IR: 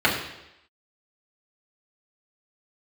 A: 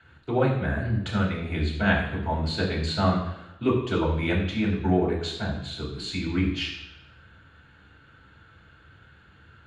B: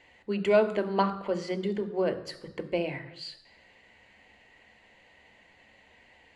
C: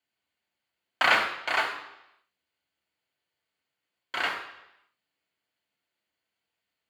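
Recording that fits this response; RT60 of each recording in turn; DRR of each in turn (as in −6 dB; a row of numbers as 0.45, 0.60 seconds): A; 0.85, 0.85, 0.85 seconds; −6.0, 8.0, 0.0 decibels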